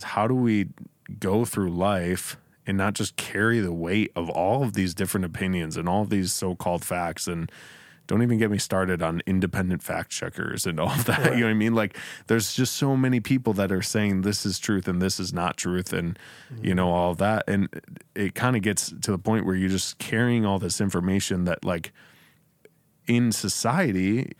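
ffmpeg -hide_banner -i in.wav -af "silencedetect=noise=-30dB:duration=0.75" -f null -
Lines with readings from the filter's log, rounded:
silence_start: 21.86
silence_end: 23.08 | silence_duration: 1.22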